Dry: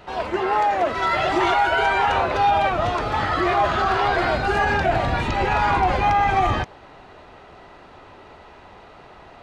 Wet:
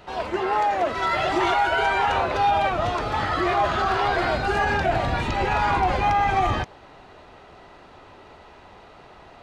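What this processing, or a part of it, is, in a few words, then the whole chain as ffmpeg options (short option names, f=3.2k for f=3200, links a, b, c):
exciter from parts: -filter_complex "[0:a]asplit=2[a][b];[b]highpass=2.6k,asoftclip=type=tanh:threshold=-32.5dB,volume=-10dB[c];[a][c]amix=inputs=2:normalize=0,volume=-2dB"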